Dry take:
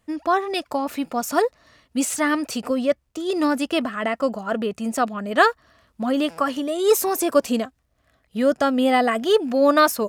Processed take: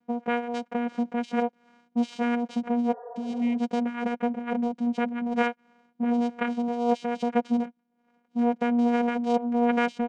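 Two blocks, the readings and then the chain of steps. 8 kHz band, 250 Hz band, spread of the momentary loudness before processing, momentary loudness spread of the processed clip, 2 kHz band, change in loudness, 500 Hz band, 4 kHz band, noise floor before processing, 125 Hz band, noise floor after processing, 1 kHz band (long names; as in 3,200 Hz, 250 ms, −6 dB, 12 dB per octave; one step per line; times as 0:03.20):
below −20 dB, −1.5 dB, 8 LU, 6 LU, −9.0 dB, −5.5 dB, −9.0 dB, −13.5 dB, −67 dBFS, can't be measured, −72 dBFS, −6.5 dB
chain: channel vocoder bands 4, saw 239 Hz
high-shelf EQ 3,900 Hz −10 dB
comb filter 5.5 ms, depth 42%
dynamic equaliser 790 Hz, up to −5 dB, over −33 dBFS, Q 1.1
downward compressor 1.5 to 1, threshold −25 dBFS, peak gain reduction 4.5 dB
healed spectral selection 0:02.95–0:03.55, 430–1,900 Hz after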